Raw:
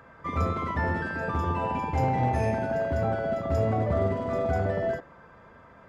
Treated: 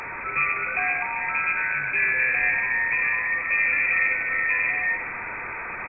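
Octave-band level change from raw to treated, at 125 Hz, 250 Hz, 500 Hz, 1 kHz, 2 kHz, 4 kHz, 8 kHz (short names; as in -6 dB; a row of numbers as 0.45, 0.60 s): -20.0 dB, -15.0 dB, -13.5 dB, -2.0 dB, +17.0 dB, under -10 dB, n/a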